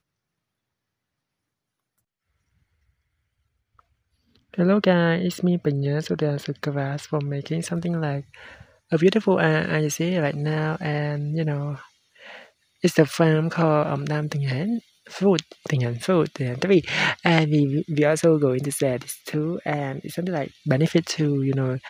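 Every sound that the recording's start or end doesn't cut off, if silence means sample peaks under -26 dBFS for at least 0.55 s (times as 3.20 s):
4.54–8.19 s
8.92–11.75 s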